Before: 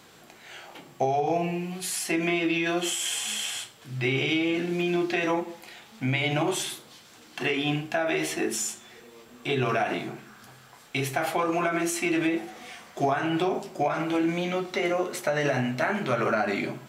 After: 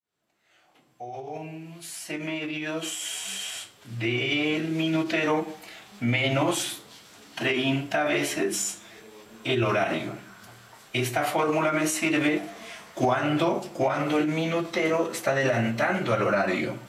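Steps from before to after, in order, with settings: opening faded in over 5.51 s; formant-preserving pitch shift -1.5 st; gain +2 dB

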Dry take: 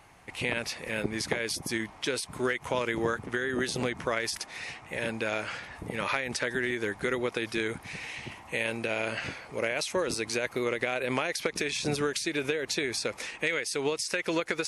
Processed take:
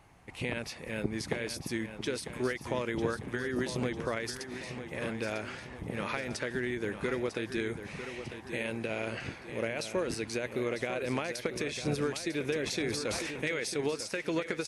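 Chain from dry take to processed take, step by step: low shelf 450 Hz +8 dB; feedback echo 0.949 s, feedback 47%, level -10 dB; 12.5–13.81 sustainer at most 26 dB/s; gain -7 dB

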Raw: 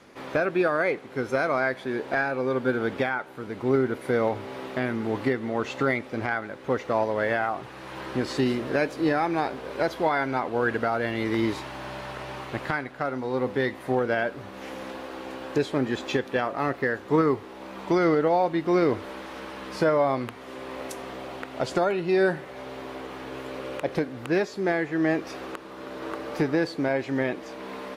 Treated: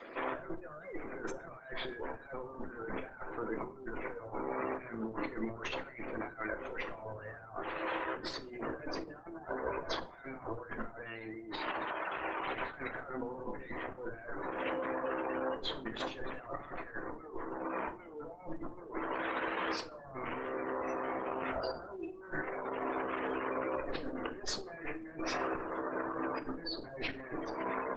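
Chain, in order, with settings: 19.95–22.48 stepped spectrum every 0.1 s; HPF 390 Hz 12 dB/oct; tube stage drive 31 dB, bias 0.7; spectral gate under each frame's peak -15 dB strong; dynamic EQ 510 Hz, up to -7 dB, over -48 dBFS, Q 1.4; negative-ratio compressor -45 dBFS, ratio -0.5; notch 820 Hz, Q 12; reverb RT60 0.45 s, pre-delay 6 ms, DRR 7 dB; gain +5 dB; Opus 10 kbps 48000 Hz

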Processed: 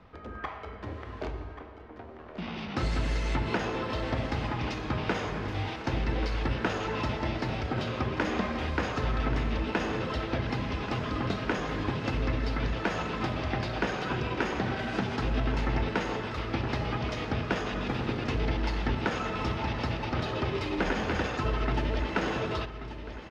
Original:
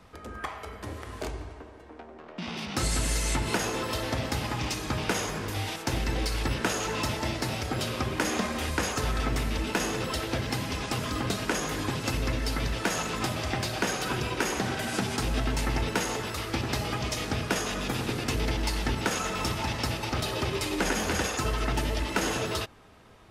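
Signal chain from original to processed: air absorption 240 m; feedback echo 1.134 s, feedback 53%, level -12.5 dB

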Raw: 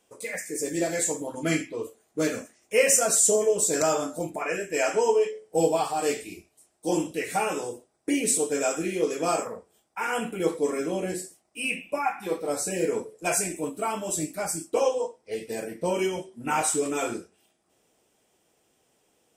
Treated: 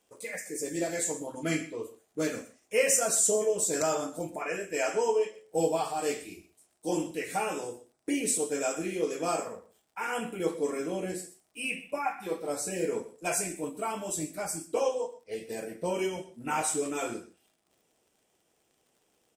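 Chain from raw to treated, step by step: echo 0.124 s -17.5 dB; crackle 65/s -51 dBFS; gain -4.5 dB

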